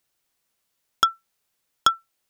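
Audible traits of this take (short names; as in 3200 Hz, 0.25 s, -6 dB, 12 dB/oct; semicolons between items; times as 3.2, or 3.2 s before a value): noise floor -76 dBFS; spectral tilt -2.0 dB/oct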